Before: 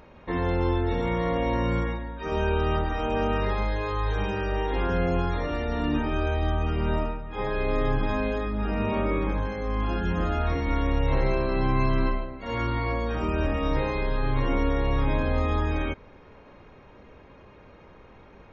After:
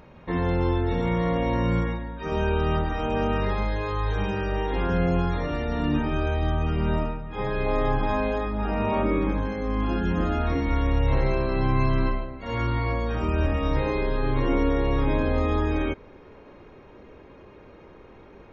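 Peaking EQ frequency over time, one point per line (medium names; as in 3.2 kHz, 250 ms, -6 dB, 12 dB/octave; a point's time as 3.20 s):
peaking EQ +6.5 dB 0.88 oct
150 Hz
from 7.66 s 810 Hz
from 9.03 s 260 Hz
from 10.67 s 91 Hz
from 13.86 s 360 Hz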